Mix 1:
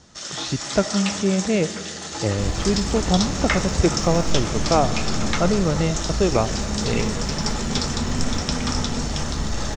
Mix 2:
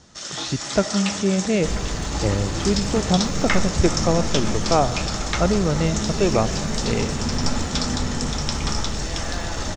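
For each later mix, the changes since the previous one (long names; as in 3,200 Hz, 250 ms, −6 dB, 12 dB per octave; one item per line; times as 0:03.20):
second sound: entry −0.75 s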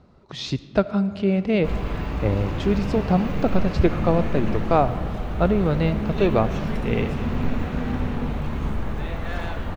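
first sound: muted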